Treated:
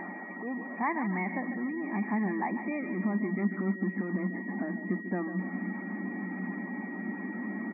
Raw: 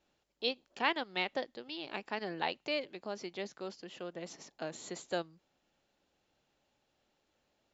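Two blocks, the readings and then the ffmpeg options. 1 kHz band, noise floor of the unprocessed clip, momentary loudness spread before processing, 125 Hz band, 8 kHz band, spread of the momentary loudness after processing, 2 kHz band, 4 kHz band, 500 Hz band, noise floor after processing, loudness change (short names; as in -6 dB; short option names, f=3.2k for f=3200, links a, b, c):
+4.0 dB, -79 dBFS, 11 LU, +18.0 dB, n/a, 6 LU, +5.0 dB, under -40 dB, +1.0 dB, -41 dBFS, +5.0 dB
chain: -filter_complex "[0:a]aeval=exprs='val(0)+0.5*0.02*sgn(val(0))':c=same,aecho=1:1:146|292|438|584|730:0.299|0.14|0.0659|0.031|0.0146,acrossover=split=1400[a][b];[b]asoftclip=type=tanh:threshold=-34dB[c];[a][c]amix=inputs=2:normalize=0,asubboost=boost=6.5:cutoff=240,afftdn=nr=22:nf=-44,acompressor=mode=upward:threshold=-38dB:ratio=2.5,lowshelf=f=440:g=5,aeval=exprs='val(0)+0.00562*sin(2*PI*1900*n/s)':c=same,afftfilt=real='re*between(b*sr/4096,180,2500)':imag='im*between(b*sr/4096,180,2500)':win_size=4096:overlap=0.75,aecho=1:1:1:0.68,volume=-1.5dB"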